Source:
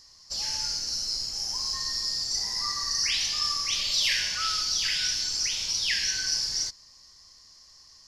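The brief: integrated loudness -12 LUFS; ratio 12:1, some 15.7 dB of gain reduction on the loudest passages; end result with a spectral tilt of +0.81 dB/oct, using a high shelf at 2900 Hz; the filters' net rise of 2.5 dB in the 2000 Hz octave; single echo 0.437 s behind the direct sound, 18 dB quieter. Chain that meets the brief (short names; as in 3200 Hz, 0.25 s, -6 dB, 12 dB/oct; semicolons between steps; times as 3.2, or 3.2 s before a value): bell 2000 Hz +6.5 dB; high shelf 2900 Hz -8.5 dB; compressor 12:1, threshold -38 dBFS; echo 0.437 s -18 dB; gain +27 dB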